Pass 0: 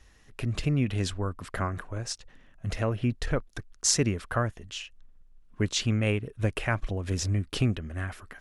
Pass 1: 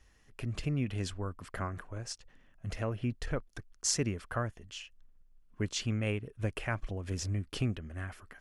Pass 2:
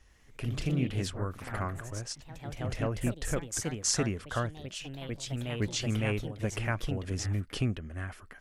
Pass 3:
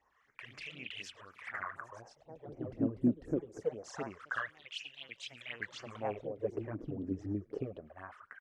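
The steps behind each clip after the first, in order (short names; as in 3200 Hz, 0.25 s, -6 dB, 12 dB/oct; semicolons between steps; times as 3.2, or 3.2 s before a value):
notch 3800 Hz, Q 14; gain -6.5 dB
echoes that change speed 98 ms, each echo +2 st, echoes 3, each echo -6 dB; gain +2 dB
frequency-shifting echo 0.108 s, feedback 52%, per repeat -77 Hz, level -24 dB; wah 0.25 Hz 280–2800 Hz, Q 3.3; phaser stages 12, 4 Hz, lowest notch 230–3800 Hz; gain +7.5 dB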